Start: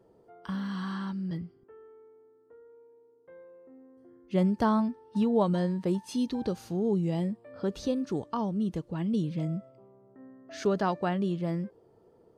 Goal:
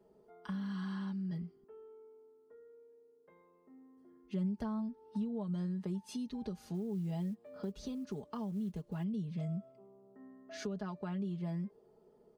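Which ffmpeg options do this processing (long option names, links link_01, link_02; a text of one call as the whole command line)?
ffmpeg -i in.wav -filter_complex "[0:a]aecho=1:1:4.8:0.8,acrossover=split=150[link_01][link_02];[link_02]acompressor=threshold=-33dB:ratio=10[link_03];[link_01][link_03]amix=inputs=2:normalize=0,asettb=1/sr,asplit=3[link_04][link_05][link_06];[link_04]atrim=end=6.744[link_07];[link_05]atrim=start=6.74:end=9.04,asetpts=PTS-STARTPTS,afade=type=in:duration=0.004:curve=qsin,afade=type=out:start_time=2.296:duration=0.004:curve=qsin,acrusher=bits=9:mode=log:mix=0:aa=0.000001[link_08];[link_06]atrim=start=9.036[link_09];[link_07][link_08]acrossfade=duration=0.004:curve1=hsin:curve2=qsin[link_10];[link_10][link_09]acrossfade=duration=0.004:curve1=qsin:curve2=hsin,volume=-6.5dB" out.wav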